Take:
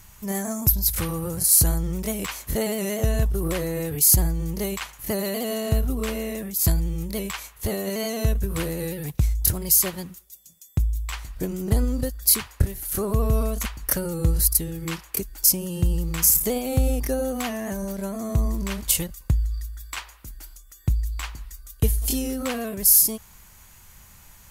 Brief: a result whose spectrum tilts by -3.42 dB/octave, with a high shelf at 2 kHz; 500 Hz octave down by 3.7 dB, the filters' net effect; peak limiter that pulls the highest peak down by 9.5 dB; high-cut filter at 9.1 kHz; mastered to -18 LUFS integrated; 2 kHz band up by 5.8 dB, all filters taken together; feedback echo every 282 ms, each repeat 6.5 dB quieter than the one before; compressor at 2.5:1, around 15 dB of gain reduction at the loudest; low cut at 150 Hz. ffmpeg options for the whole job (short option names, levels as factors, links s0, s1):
-af "highpass=150,lowpass=9100,equalizer=f=500:t=o:g=-5,highshelf=f=2000:g=4.5,equalizer=f=2000:t=o:g=4.5,acompressor=threshold=0.0141:ratio=2.5,alimiter=level_in=1.12:limit=0.0631:level=0:latency=1,volume=0.891,aecho=1:1:282|564|846|1128|1410|1692:0.473|0.222|0.105|0.0491|0.0231|0.0109,volume=8.41"